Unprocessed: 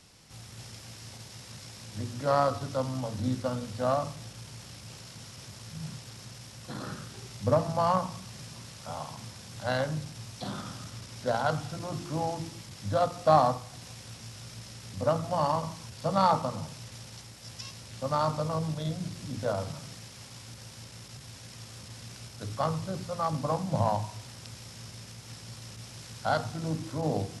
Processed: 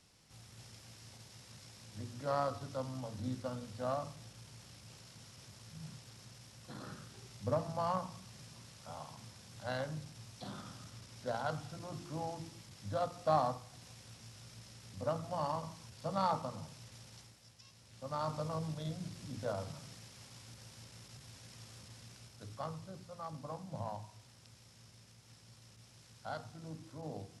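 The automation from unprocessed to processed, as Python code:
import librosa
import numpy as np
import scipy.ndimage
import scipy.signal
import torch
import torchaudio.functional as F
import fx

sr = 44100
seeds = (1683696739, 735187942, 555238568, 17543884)

y = fx.gain(x, sr, db=fx.line((17.23, -9.5), (17.57, -18.5), (18.38, -8.0), (21.72, -8.0), (23.04, -15.0)))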